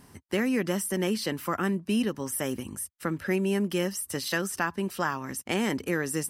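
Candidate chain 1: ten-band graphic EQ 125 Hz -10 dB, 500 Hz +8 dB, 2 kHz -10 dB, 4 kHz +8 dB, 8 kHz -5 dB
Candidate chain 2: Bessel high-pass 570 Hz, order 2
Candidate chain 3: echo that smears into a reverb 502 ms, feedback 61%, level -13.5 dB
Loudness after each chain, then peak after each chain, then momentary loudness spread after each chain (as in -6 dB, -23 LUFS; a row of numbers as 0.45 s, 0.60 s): -28.0 LUFS, -33.0 LUFS, -29.0 LUFS; -13.0 dBFS, -12.5 dBFS, -12.5 dBFS; 6 LU, 5 LU, 5 LU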